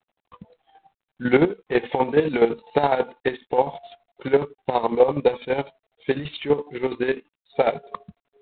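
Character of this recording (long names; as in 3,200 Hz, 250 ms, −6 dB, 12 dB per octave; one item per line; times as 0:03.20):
chopped level 12 Hz, depth 65%, duty 40%
G.726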